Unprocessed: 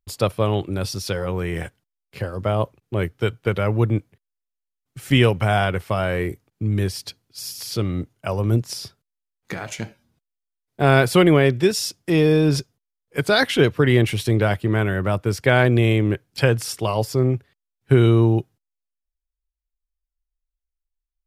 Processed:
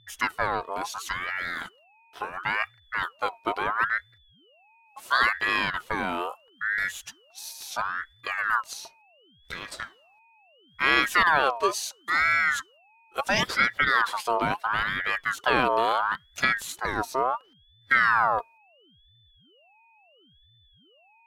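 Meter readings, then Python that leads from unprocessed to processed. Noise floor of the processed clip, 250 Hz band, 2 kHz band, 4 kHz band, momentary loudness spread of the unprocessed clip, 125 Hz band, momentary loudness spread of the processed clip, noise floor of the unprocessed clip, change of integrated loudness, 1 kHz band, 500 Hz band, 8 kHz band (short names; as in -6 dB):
-60 dBFS, -17.0 dB, +2.5 dB, -4.0 dB, 15 LU, -26.0 dB, 15 LU, -83 dBFS, -5.0 dB, +3.0 dB, -12.5 dB, -5.0 dB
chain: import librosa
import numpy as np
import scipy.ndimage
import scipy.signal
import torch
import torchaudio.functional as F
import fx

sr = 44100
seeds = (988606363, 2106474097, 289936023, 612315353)

y = x + 10.0 ** (-50.0 / 20.0) * np.sin(2.0 * np.pi * 1700.0 * np.arange(len(x)) / sr)
y = fx.ring_lfo(y, sr, carrier_hz=1300.0, swing_pct=40, hz=0.73)
y = y * librosa.db_to_amplitude(-4.0)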